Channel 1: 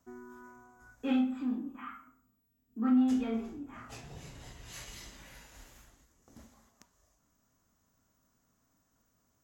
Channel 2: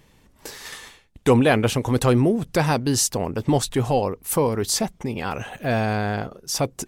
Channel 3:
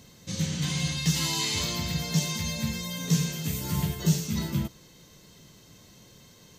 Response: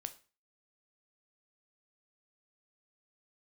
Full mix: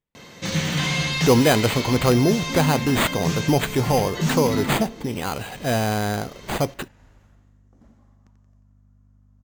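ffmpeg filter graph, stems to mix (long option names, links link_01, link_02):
-filter_complex "[0:a]lowpass=frequency=1200:poles=1,aeval=exprs='val(0)+0.002*(sin(2*PI*50*n/s)+sin(2*PI*2*50*n/s)/2+sin(2*PI*3*50*n/s)/3+sin(2*PI*4*50*n/s)/4+sin(2*PI*5*50*n/s)/5)':channel_layout=same,adelay=1450,volume=0.5dB,asplit=2[link_01][link_02];[link_02]volume=-8dB[link_03];[1:a]agate=range=-32dB:threshold=-50dB:ratio=16:detection=peak,acrusher=samples=8:mix=1:aa=0.000001,volume=-2.5dB,asplit=3[link_04][link_05][link_06];[link_05]volume=-5dB[link_07];[2:a]equalizer=frequency=2200:width_type=o:width=0.77:gain=3.5,asplit=2[link_08][link_09];[link_09]highpass=frequency=720:poles=1,volume=20dB,asoftclip=type=tanh:threshold=-11.5dB[link_10];[link_08][link_10]amix=inputs=2:normalize=0,lowpass=frequency=1300:poles=1,volume=-6dB,adelay=150,volume=0.5dB,asplit=2[link_11][link_12];[link_12]volume=-3.5dB[link_13];[link_06]apad=whole_len=297184[link_14];[link_11][link_14]sidechaincompress=threshold=-27dB:ratio=8:attack=16:release=801[link_15];[3:a]atrim=start_sample=2205[link_16];[link_07][link_13]amix=inputs=2:normalize=0[link_17];[link_17][link_16]afir=irnorm=-1:irlink=0[link_18];[link_03]aecho=0:1:89|178|267|356|445|534|623|712|801:1|0.58|0.336|0.195|0.113|0.0656|0.0381|0.0221|0.0128[link_19];[link_01][link_04][link_15][link_18][link_19]amix=inputs=5:normalize=0"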